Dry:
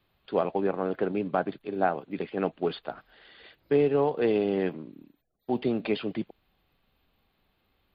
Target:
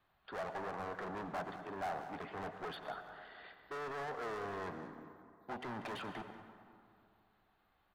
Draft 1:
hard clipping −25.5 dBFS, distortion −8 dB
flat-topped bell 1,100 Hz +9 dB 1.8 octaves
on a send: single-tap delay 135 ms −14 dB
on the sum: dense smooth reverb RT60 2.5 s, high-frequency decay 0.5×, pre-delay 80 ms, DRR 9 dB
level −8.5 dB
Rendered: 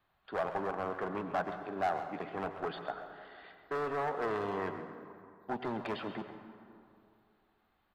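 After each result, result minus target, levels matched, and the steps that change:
echo 55 ms early; hard clipping: distortion −5 dB
change: single-tap delay 190 ms −14 dB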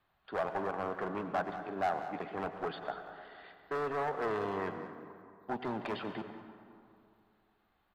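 hard clipping: distortion −5 dB
change: hard clipping −35.5 dBFS, distortion −2 dB

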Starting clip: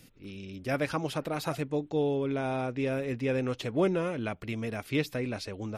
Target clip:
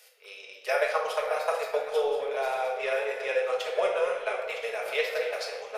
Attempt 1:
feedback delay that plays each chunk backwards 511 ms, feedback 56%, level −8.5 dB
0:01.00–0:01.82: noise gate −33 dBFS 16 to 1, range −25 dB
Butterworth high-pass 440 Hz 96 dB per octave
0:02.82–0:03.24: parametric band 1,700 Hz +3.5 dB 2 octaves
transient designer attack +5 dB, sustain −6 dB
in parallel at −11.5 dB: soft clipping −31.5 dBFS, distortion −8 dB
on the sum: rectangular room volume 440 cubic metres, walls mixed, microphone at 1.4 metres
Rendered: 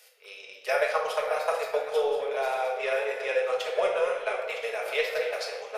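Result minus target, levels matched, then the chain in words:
soft clipping: distortion −6 dB
feedback delay that plays each chunk backwards 511 ms, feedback 56%, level −8.5 dB
0:01.00–0:01.82: noise gate −33 dBFS 16 to 1, range −25 dB
Butterworth high-pass 440 Hz 96 dB per octave
0:02.82–0:03.24: parametric band 1,700 Hz +3.5 dB 2 octaves
transient designer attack +5 dB, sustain −6 dB
in parallel at −11.5 dB: soft clipping −42.5 dBFS, distortion −2 dB
on the sum: rectangular room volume 440 cubic metres, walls mixed, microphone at 1.4 metres

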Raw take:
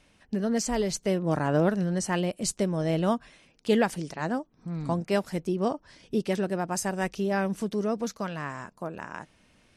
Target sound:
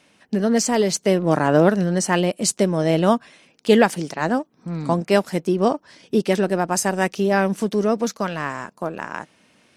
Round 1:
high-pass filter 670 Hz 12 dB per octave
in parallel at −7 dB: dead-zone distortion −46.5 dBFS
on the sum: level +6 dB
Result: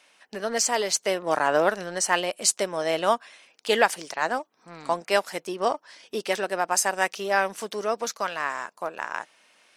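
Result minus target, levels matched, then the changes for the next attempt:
125 Hz band −15.5 dB
change: high-pass filter 170 Hz 12 dB per octave

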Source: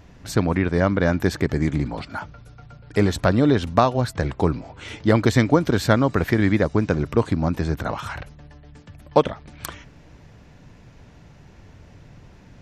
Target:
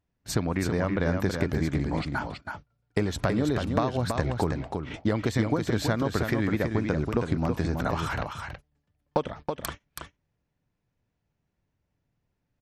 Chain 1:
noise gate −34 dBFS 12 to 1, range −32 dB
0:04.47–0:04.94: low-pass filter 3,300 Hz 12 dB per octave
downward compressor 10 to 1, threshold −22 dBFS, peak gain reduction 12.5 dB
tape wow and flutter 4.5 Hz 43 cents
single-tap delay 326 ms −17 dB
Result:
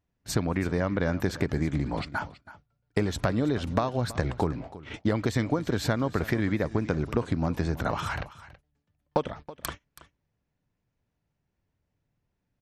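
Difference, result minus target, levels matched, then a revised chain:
echo-to-direct −11.5 dB
noise gate −34 dBFS 12 to 1, range −32 dB
0:04.47–0:04.94: low-pass filter 3,300 Hz 12 dB per octave
downward compressor 10 to 1, threshold −22 dBFS, peak gain reduction 12.5 dB
tape wow and flutter 4.5 Hz 43 cents
single-tap delay 326 ms −5.5 dB

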